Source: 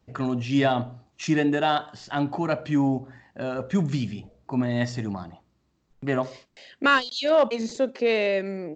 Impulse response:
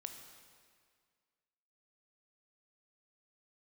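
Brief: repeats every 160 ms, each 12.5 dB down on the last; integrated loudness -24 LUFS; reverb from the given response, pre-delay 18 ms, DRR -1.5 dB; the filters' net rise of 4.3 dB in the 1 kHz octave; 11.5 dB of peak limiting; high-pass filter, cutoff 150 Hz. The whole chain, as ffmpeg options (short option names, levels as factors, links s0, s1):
-filter_complex "[0:a]highpass=150,equalizer=f=1000:t=o:g=6,alimiter=limit=0.15:level=0:latency=1,aecho=1:1:160|320|480:0.237|0.0569|0.0137,asplit=2[s0][s1];[1:a]atrim=start_sample=2205,adelay=18[s2];[s1][s2]afir=irnorm=-1:irlink=0,volume=1.78[s3];[s0][s3]amix=inputs=2:normalize=0"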